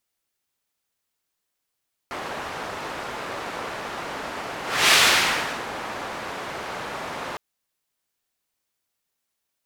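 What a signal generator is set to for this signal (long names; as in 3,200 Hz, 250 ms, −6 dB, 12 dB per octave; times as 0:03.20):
pass-by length 5.26 s, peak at 0:02.82, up 0.33 s, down 0.81 s, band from 980 Hz, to 3,000 Hz, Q 0.74, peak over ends 17 dB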